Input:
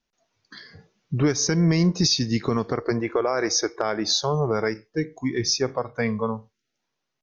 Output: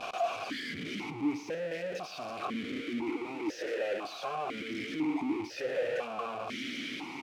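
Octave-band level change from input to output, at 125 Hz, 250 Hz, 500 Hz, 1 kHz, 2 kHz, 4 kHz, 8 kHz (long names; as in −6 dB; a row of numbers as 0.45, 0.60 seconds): −24.5 dB, −10.0 dB, −9.0 dB, −5.5 dB, −5.5 dB, −15.0 dB, can't be measured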